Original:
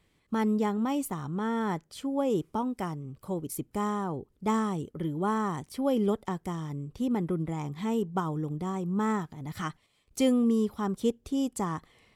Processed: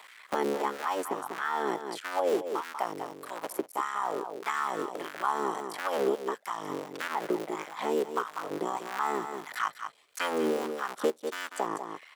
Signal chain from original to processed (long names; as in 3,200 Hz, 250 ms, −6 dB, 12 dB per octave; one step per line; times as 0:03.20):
sub-harmonics by changed cycles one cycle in 3, muted
auto-filter high-pass sine 1.6 Hz 390–1,600 Hz
on a send: single-tap delay 193 ms −10 dB
on the sum: multiband upward and downward compressor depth 70%